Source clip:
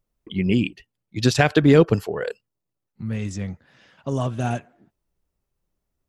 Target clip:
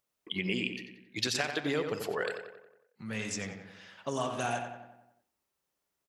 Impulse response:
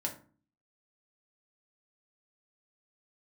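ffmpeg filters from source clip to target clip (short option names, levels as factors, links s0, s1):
-filter_complex "[0:a]highpass=f=1100:p=1,acompressor=threshold=0.0282:ratio=12,flanger=delay=8.1:depth=9.5:regen=89:speed=0.42:shape=triangular,asplit=2[s0][s1];[s1]adelay=91,lowpass=f=2900:p=1,volume=0.473,asplit=2[s2][s3];[s3]adelay=91,lowpass=f=2900:p=1,volume=0.55,asplit=2[s4][s5];[s5]adelay=91,lowpass=f=2900:p=1,volume=0.55,asplit=2[s6][s7];[s7]adelay=91,lowpass=f=2900:p=1,volume=0.55,asplit=2[s8][s9];[s9]adelay=91,lowpass=f=2900:p=1,volume=0.55,asplit=2[s10][s11];[s11]adelay=91,lowpass=f=2900:p=1,volume=0.55,asplit=2[s12][s13];[s13]adelay=91,lowpass=f=2900:p=1,volume=0.55[s14];[s0][s2][s4][s6][s8][s10][s12][s14]amix=inputs=8:normalize=0,volume=2.37"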